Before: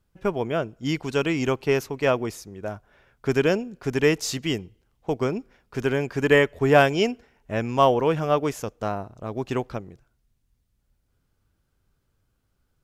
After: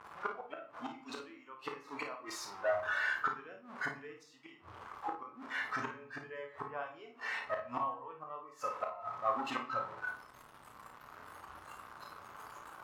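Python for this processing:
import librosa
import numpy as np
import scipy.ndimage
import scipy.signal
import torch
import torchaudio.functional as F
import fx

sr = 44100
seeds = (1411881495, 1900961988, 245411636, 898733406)

y = x + 0.5 * 10.0 ** (-23.5 / 20.0) * np.sign(x)
y = fx.noise_reduce_blind(y, sr, reduce_db=16)
y = fx.gate_flip(y, sr, shuts_db=-18.0, range_db=-26)
y = np.clip(y, -10.0 ** (-25.5 / 20.0), 10.0 ** (-25.5 / 20.0))
y = fx.bandpass_q(y, sr, hz=1100.0, q=3.2)
y = fx.room_early_taps(y, sr, ms=(33, 54), db=(-8.5, -9.5))
y = fx.room_shoebox(y, sr, seeds[0], volume_m3=64.0, walls='mixed', distance_m=0.37)
y = F.gain(torch.from_numpy(y), 8.0).numpy()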